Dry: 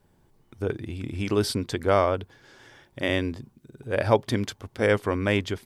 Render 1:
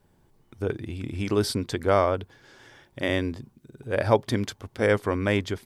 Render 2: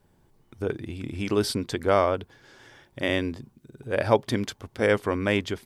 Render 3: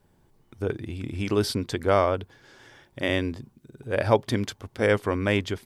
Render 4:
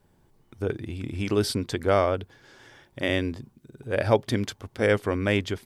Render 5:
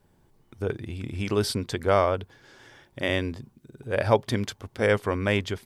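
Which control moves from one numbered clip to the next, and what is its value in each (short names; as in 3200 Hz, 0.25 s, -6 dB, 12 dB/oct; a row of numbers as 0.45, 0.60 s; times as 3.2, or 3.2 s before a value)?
dynamic EQ, frequency: 2800, 100, 8500, 1000, 300 Hz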